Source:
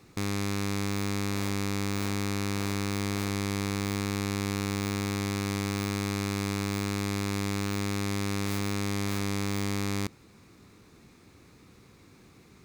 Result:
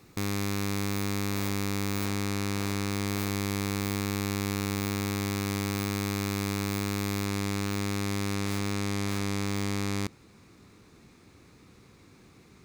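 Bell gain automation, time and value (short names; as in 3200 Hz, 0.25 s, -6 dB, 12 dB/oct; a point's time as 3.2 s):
bell 16000 Hz 0.45 oct
+10 dB
from 2.05 s +3.5 dB
from 3.07 s +10.5 dB
from 7.26 s +2.5 dB
from 8.35 s -5.5 dB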